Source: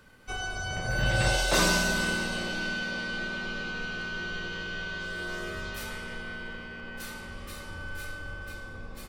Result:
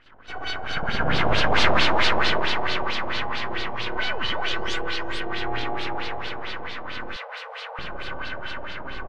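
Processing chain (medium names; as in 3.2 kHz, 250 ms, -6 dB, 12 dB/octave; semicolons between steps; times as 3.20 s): spring tank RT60 2.5 s, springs 59 ms, chirp 45 ms, DRR -8 dB; 3.98–4.84 s: painted sound rise 570–9600 Hz -34 dBFS; full-wave rectifier; on a send: delay 369 ms -4.5 dB; on the sum: LFO low-pass sine 4.5 Hz 720–4300 Hz; 7.16–7.79 s: brick-wall FIR high-pass 430 Hz; loudspeaker Doppler distortion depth 0.1 ms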